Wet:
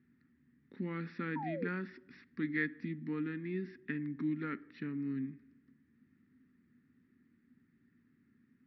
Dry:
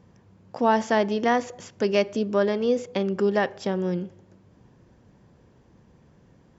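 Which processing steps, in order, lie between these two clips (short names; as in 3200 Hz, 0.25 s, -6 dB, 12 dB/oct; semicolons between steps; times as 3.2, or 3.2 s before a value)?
double band-pass 880 Hz, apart 2.9 oct; painted sound fall, 1.03–1.28, 540–1300 Hz -41 dBFS; varispeed -24%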